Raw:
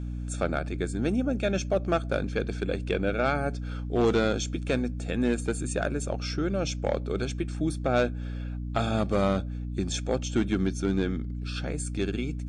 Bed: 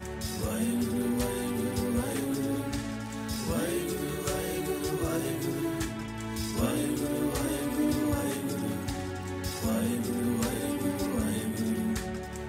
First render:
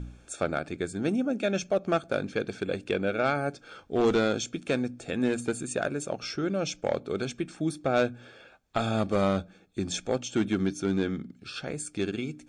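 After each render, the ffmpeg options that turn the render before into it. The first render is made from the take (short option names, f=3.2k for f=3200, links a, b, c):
-af "bandreject=f=60:t=h:w=4,bandreject=f=120:t=h:w=4,bandreject=f=180:t=h:w=4,bandreject=f=240:t=h:w=4,bandreject=f=300:t=h:w=4"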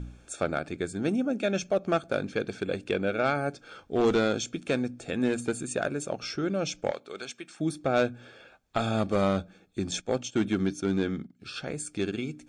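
-filter_complex "[0:a]asettb=1/sr,asplit=3[a][b][c];[a]atrim=end=6.914[d];[b]atrim=start=6.91:end=7.6,asetpts=PTS-STARTPTS,afade=t=in:d=0.004:c=qsin,afade=t=out:st=0.686:d=0.004:c=qsin,highpass=f=1.2k:p=1[e];[c]atrim=start=7.596[f];[d][e]acrossfade=d=0.004:c1=hsin:c2=qsin[g];[g][f]acrossfade=d=0.004:c1=qsin:c2=hsin,asettb=1/sr,asplit=3[h][i][j];[h]atrim=end=9.914[k];[i]atrim=start=9.91:end=11.4,asetpts=PTS-STARTPTS,afade=t=in:d=0.004:c=qsin,afade=t=out:st=1.486:d=0.004:c=qsin,agate=range=-11dB:threshold=-41dB:ratio=16:release=100:detection=peak[l];[j]atrim=start=11.396[m];[k][l]acrossfade=d=0.004:c1=hsin:c2=qsin[n];[n][m]acrossfade=d=0.004:c1=qsin:c2=hsin"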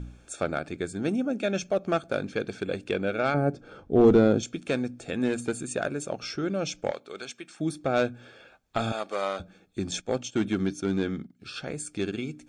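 -filter_complex "[0:a]asettb=1/sr,asplit=3[a][b][c];[a]atrim=end=3.344[d];[b]atrim=start=3.34:end=4.43,asetpts=PTS-STARTPTS,afade=t=in:d=0.004:c=qsin,afade=t=out:st=1.086:d=0.004:c=qsin,tiltshelf=f=970:g=9[e];[c]atrim=start=4.426[f];[d][e]acrossfade=d=0.004:c1=hsin:c2=qsin[g];[g][f]acrossfade=d=0.004:c1=qsin:c2=hsin,asettb=1/sr,asplit=3[h][i][j];[h]atrim=end=8.924[k];[i]atrim=start=8.92:end=9.4,asetpts=PTS-STARTPTS,afade=t=in:d=0.004:c=qsin,afade=t=out:st=0.476:d=0.004:c=qsin,highpass=580[l];[j]atrim=start=9.396[m];[k][l]acrossfade=d=0.004:c1=hsin:c2=qsin[n];[n][m]acrossfade=d=0.004:c1=qsin:c2=hsin"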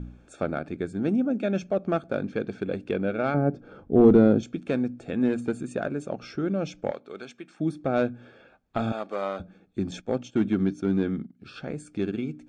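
-af "lowpass=f=1.6k:p=1,equalizer=f=220:w=1.4:g=4.5"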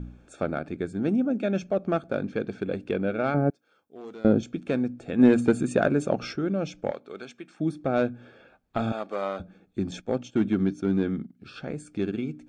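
-filter_complex "[0:a]asettb=1/sr,asplit=3[a][b][c];[a]atrim=end=3.504[d];[b]atrim=start=3.5:end=4.25,asetpts=PTS-STARTPTS,afade=t=in:d=0.004:c=qsin,afade=t=out:st=0.746:d=0.004:c=qsin,aderivative[e];[c]atrim=start=4.246[f];[d][e]acrossfade=d=0.004:c1=hsin:c2=qsin[g];[g][f]acrossfade=d=0.004:c1=qsin:c2=hsin,asplit=3[h][i][j];[h]afade=t=out:st=5.18:d=0.02[k];[i]acontrast=89,afade=t=in:st=5.18:d=0.02,afade=t=out:st=6.32:d=0.02[l];[j]afade=t=in:st=6.32:d=0.02[m];[k][l][m]amix=inputs=3:normalize=0"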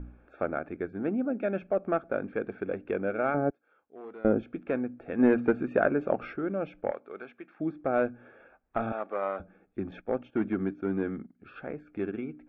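-af "lowpass=f=2.2k:w=0.5412,lowpass=f=2.2k:w=1.3066,equalizer=f=140:t=o:w=1.8:g=-10.5"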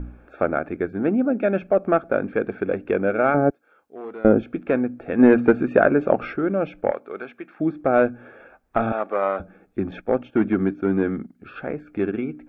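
-af "volume=9dB,alimiter=limit=-3dB:level=0:latency=1"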